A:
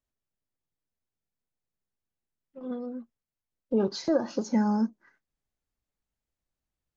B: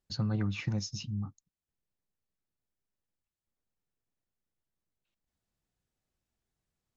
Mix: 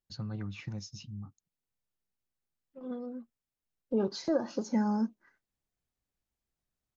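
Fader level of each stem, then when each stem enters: -4.0, -7.0 dB; 0.20, 0.00 s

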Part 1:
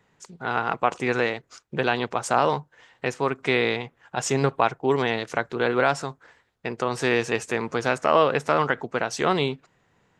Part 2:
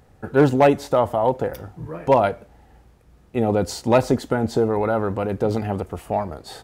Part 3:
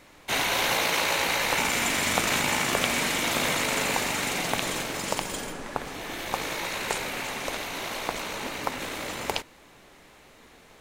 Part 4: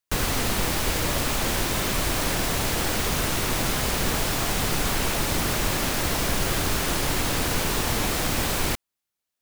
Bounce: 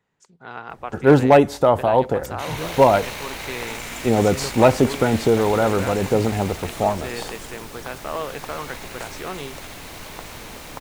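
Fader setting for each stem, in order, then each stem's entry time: -10.0, +2.5, -8.0, -14.5 dB; 0.00, 0.70, 2.10, 2.45 s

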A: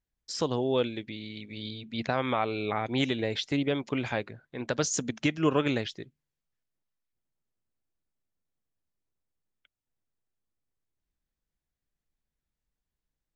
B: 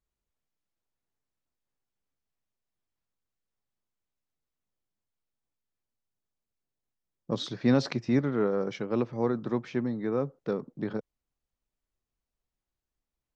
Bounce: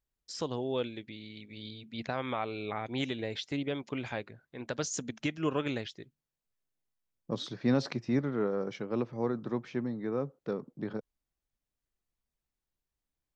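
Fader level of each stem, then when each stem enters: -6.0, -4.0 dB; 0.00, 0.00 s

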